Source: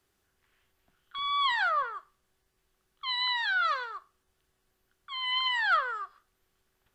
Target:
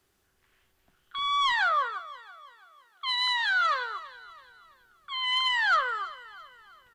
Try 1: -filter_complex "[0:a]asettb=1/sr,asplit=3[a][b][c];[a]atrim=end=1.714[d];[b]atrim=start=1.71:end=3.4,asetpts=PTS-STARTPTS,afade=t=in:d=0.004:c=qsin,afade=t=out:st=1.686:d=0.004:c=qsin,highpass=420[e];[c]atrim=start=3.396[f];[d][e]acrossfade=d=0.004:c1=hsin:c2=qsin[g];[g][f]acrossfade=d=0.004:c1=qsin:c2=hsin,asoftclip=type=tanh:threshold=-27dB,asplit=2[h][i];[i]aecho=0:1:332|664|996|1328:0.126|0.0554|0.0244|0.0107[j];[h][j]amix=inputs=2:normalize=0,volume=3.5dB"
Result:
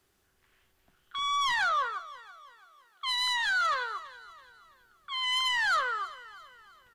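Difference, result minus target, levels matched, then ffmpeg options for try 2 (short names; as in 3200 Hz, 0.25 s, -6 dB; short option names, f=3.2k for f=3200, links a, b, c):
soft clip: distortion +9 dB
-filter_complex "[0:a]asettb=1/sr,asplit=3[a][b][c];[a]atrim=end=1.714[d];[b]atrim=start=1.71:end=3.4,asetpts=PTS-STARTPTS,afade=t=in:d=0.004:c=qsin,afade=t=out:st=1.686:d=0.004:c=qsin,highpass=420[e];[c]atrim=start=3.396[f];[d][e]acrossfade=d=0.004:c1=hsin:c2=qsin[g];[g][f]acrossfade=d=0.004:c1=qsin:c2=hsin,asoftclip=type=tanh:threshold=-20dB,asplit=2[h][i];[i]aecho=0:1:332|664|996|1328:0.126|0.0554|0.0244|0.0107[j];[h][j]amix=inputs=2:normalize=0,volume=3.5dB"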